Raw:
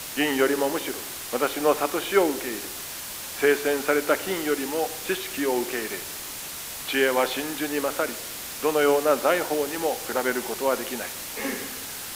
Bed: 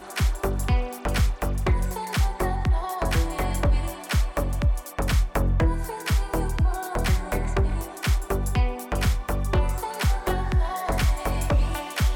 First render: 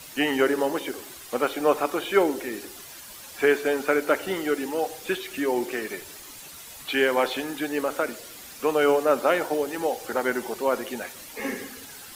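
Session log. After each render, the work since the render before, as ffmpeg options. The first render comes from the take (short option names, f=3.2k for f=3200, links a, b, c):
-af "afftdn=nr=10:nf=-36"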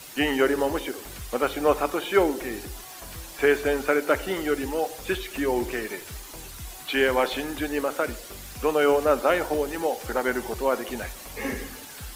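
-filter_complex "[1:a]volume=-19dB[a];[0:a][a]amix=inputs=2:normalize=0"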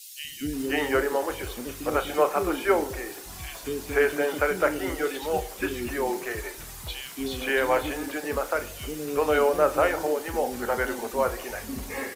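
-filter_complex "[0:a]asplit=2[a][b];[b]adelay=33,volume=-11.5dB[c];[a][c]amix=inputs=2:normalize=0,acrossover=split=320|3100[d][e][f];[d]adelay=240[g];[e]adelay=530[h];[g][h][f]amix=inputs=3:normalize=0"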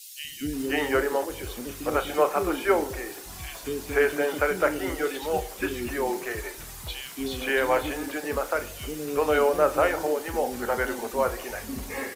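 -filter_complex "[0:a]asettb=1/sr,asplit=3[a][b][c];[a]atrim=end=1.244[d];[b]atrim=start=1.24:end=1.71,asetpts=PTS-STARTPTS,afade=t=in:d=0.004:c=qsin,afade=t=out:st=0.466:d=0.004:c=qsin,acrossover=split=480|3000[e][f][g];[f]acompressor=threshold=-41dB:ratio=6:attack=3.2:release=140:knee=2.83:detection=peak[h];[e][h][g]amix=inputs=3:normalize=0[i];[c]atrim=start=1.706[j];[d][i]acrossfade=d=0.004:c1=hsin:c2=qsin[k];[k][j]acrossfade=d=0.004:c1=qsin:c2=hsin"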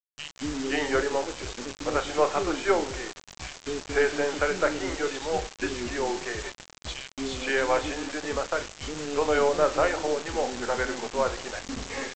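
-af "aeval=exprs='if(lt(val(0),0),0.708*val(0),val(0))':c=same,aresample=16000,acrusher=bits=5:mix=0:aa=0.000001,aresample=44100"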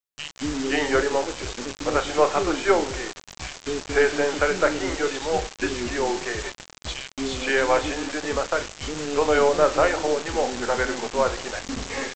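-af "volume=4dB"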